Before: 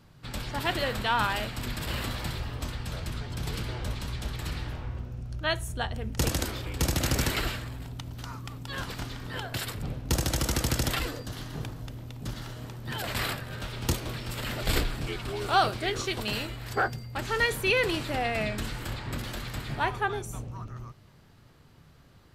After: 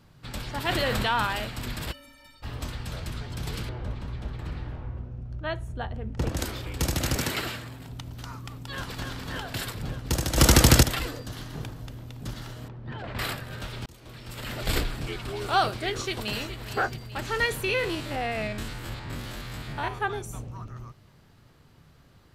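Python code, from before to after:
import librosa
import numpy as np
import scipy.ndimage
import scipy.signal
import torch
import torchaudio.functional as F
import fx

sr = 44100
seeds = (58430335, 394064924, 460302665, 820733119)

y = fx.env_flatten(x, sr, amount_pct=70, at=(0.68, 1.2))
y = fx.stiff_resonator(y, sr, f0_hz=270.0, decay_s=0.46, stiffness=0.03, at=(1.91, 2.42), fade=0.02)
y = fx.lowpass(y, sr, hz=1100.0, slope=6, at=(3.69, 6.37))
y = fx.highpass(y, sr, hz=110.0, slope=12, at=(7.16, 7.89))
y = fx.echo_throw(y, sr, start_s=8.63, length_s=0.44, ms=290, feedback_pct=75, wet_db=-4.0)
y = fx.spacing_loss(y, sr, db_at_10k=35, at=(12.68, 13.19))
y = fx.echo_throw(y, sr, start_s=15.92, length_s=0.74, ms=420, feedback_pct=60, wet_db=-12.0)
y = fx.spec_steps(y, sr, hold_ms=50, at=(17.64, 20.01))
y = fx.edit(y, sr, fx.clip_gain(start_s=10.37, length_s=0.46, db=11.0),
    fx.fade_in_span(start_s=13.86, length_s=0.77), tone=tone)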